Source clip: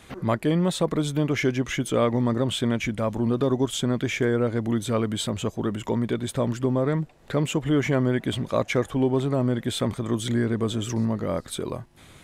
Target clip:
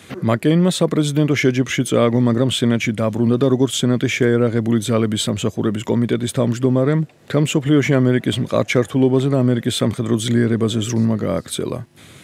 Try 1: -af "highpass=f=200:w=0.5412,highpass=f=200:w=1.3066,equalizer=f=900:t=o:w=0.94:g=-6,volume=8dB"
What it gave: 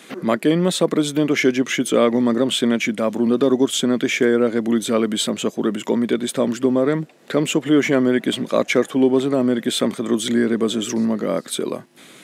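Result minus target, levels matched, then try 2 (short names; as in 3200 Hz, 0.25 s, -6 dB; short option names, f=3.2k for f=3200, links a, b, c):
125 Hz band -11.0 dB
-af "highpass=f=88:w=0.5412,highpass=f=88:w=1.3066,equalizer=f=900:t=o:w=0.94:g=-6,volume=8dB"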